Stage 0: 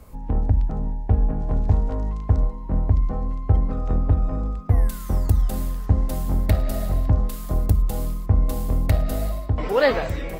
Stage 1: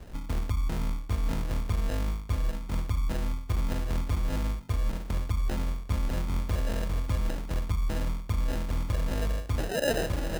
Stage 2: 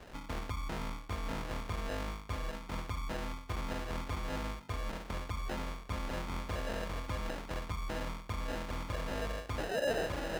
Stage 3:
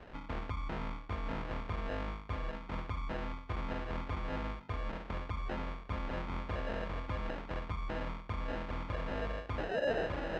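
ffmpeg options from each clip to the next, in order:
-af "areverse,acompressor=threshold=-26dB:ratio=6,areverse,acrusher=samples=39:mix=1:aa=0.000001,volume=1dB"
-filter_complex "[0:a]asplit=2[a][b];[b]highpass=f=720:p=1,volume=15dB,asoftclip=type=tanh:threshold=-17dB[c];[a][c]amix=inputs=2:normalize=0,lowpass=f=3.9k:p=1,volume=-6dB,volume=-6.5dB"
-af "lowpass=2.9k"

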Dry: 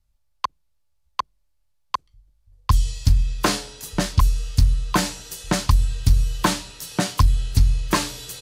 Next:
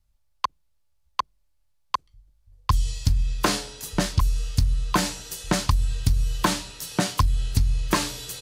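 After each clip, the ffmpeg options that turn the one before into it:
-af "acompressor=threshold=-16dB:ratio=6"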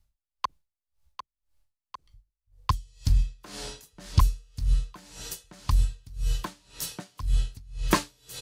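-af "aeval=exprs='val(0)*pow(10,-30*(0.5-0.5*cos(2*PI*1.9*n/s))/20)':c=same,volume=2dB"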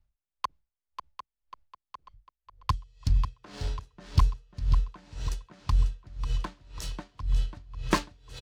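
-af "aecho=1:1:543|1086|1629|2172|2715:0.355|0.17|0.0817|0.0392|0.0188,adynamicsmooth=sensitivity=6:basefreq=3.5k,volume=-2dB"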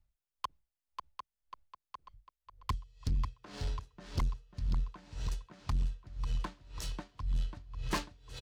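-af "asoftclip=type=tanh:threshold=-24dB,volume=-2.5dB"

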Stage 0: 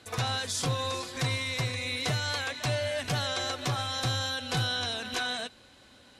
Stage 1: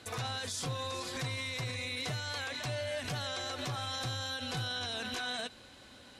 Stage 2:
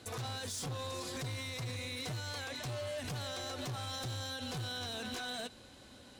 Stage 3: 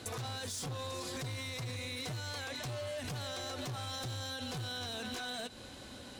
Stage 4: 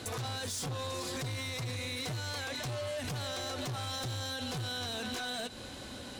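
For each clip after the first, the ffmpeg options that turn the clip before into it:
-af "alimiter=level_in=6.5dB:limit=-24dB:level=0:latency=1:release=46,volume=-6.5dB,volume=1.5dB"
-af "equalizer=f=2k:t=o:w=2.7:g=-6,asoftclip=type=hard:threshold=-38dB,volume=1.5dB"
-af "acompressor=threshold=-45dB:ratio=6,volume=6.5dB"
-af "asoftclip=type=tanh:threshold=-37dB,volume=5dB"

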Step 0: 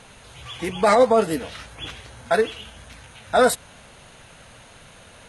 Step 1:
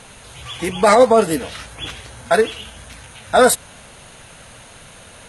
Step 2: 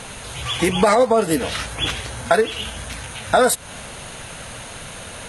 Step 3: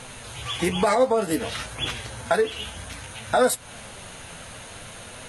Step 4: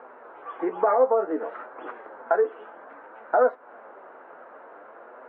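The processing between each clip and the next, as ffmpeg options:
-af "equalizer=f=10k:t=o:w=1.1:g=5,volume=4.5dB"
-af "acompressor=threshold=-21dB:ratio=4,volume=7dB"
-af "flanger=delay=7.9:depth=3.9:regen=55:speed=0.57:shape=sinusoidal,volume=-1.5dB"
-af "asuperpass=centerf=680:order=8:qfactor=0.59"

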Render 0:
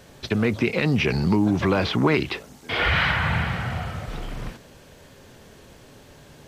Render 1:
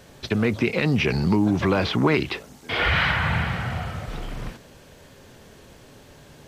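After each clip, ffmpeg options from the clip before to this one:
-af anull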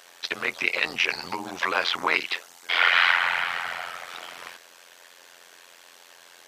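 -af "highpass=1k,tremolo=f=87:d=0.919,volume=7.5dB"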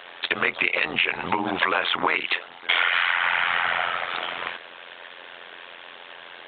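-filter_complex "[0:a]asplit=2[a][b];[b]alimiter=limit=-16dB:level=0:latency=1:release=23,volume=-2.5dB[c];[a][c]amix=inputs=2:normalize=0,acompressor=threshold=-23dB:ratio=10,volume=5.5dB" -ar 8000 -c:a pcm_alaw

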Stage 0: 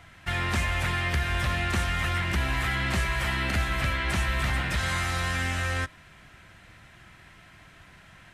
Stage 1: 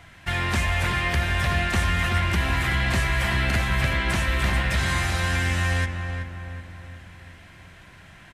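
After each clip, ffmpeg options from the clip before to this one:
-filter_complex "[0:a]bandreject=f=1.3k:w=19,asplit=2[a][b];[b]adelay=377,lowpass=f=1.9k:p=1,volume=-6dB,asplit=2[c][d];[d]adelay=377,lowpass=f=1.9k:p=1,volume=0.53,asplit=2[e][f];[f]adelay=377,lowpass=f=1.9k:p=1,volume=0.53,asplit=2[g][h];[h]adelay=377,lowpass=f=1.9k:p=1,volume=0.53,asplit=2[i][j];[j]adelay=377,lowpass=f=1.9k:p=1,volume=0.53,asplit=2[k][l];[l]adelay=377,lowpass=f=1.9k:p=1,volume=0.53,asplit=2[m][n];[n]adelay=377,lowpass=f=1.9k:p=1,volume=0.53[o];[c][e][g][i][k][m][o]amix=inputs=7:normalize=0[p];[a][p]amix=inputs=2:normalize=0,volume=3dB"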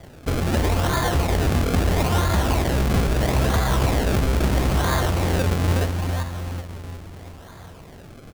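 -filter_complex "[0:a]asplit=2[a][b];[b]alimiter=limit=-22.5dB:level=0:latency=1,volume=-0.5dB[c];[a][c]amix=inputs=2:normalize=0,acrusher=samples=32:mix=1:aa=0.000001:lfo=1:lforange=32:lforate=0.76"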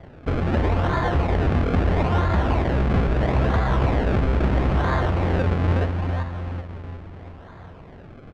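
-af "lowpass=2.3k"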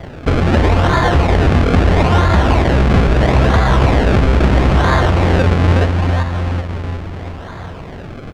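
-filter_complex "[0:a]highshelf=f=3.8k:g=10.5,asplit=2[a][b];[b]acompressor=threshold=-28dB:ratio=6,volume=1dB[c];[a][c]amix=inputs=2:normalize=0,volume=6dB"

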